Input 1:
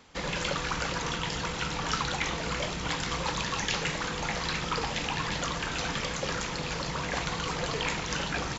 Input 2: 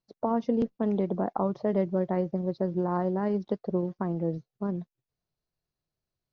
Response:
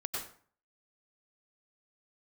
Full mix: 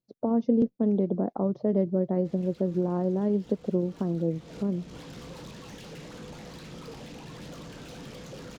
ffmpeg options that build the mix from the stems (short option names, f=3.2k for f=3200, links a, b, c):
-filter_complex "[0:a]acrossover=split=6800[a][b];[b]acompressor=threshold=-55dB:ratio=4:attack=1:release=60[c];[a][c]amix=inputs=2:normalize=0,alimiter=limit=-19dB:level=0:latency=1:release=221,asoftclip=type=tanh:threshold=-36.5dB,adelay=2100,volume=-7dB[d];[1:a]volume=-5.5dB,asplit=2[e][f];[f]apad=whole_len=471119[g];[d][g]sidechaincompress=threshold=-43dB:ratio=8:attack=10:release=245[h];[h][e]amix=inputs=2:normalize=0,equalizer=f=125:t=o:w=1:g=6,equalizer=f=250:t=o:w=1:g=8,equalizer=f=500:t=o:w=1:g=6,equalizer=f=1k:t=o:w=1:g=-4,equalizer=f=2k:t=o:w=1:g=-4"